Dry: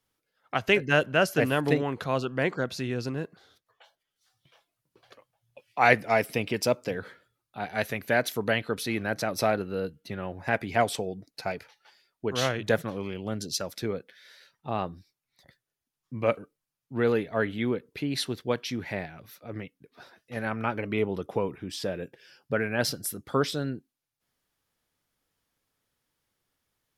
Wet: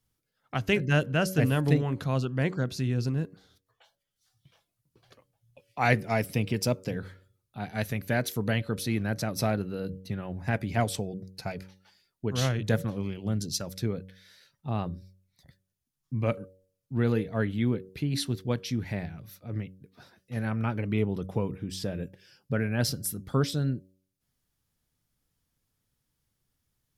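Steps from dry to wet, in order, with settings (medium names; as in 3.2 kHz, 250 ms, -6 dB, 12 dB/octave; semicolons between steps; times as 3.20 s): tone controls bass +14 dB, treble +6 dB; de-hum 94.16 Hz, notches 6; trim -5.5 dB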